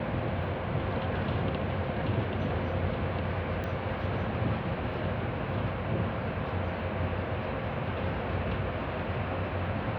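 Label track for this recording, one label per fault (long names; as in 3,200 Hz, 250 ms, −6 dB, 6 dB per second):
3.640000	3.640000	click −24 dBFS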